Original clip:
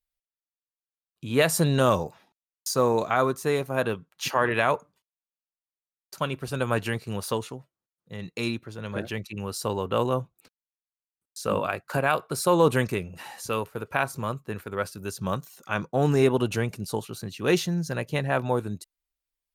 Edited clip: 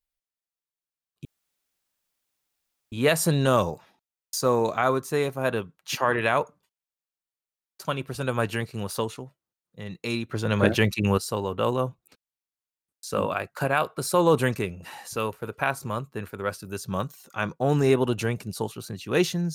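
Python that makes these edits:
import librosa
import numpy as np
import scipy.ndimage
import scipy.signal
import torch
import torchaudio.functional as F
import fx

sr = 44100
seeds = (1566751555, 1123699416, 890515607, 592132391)

y = fx.edit(x, sr, fx.insert_room_tone(at_s=1.25, length_s=1.67),
    fx.clip_gain(start_s=8.64, length_s=0.87, db=11.0), tone=tone)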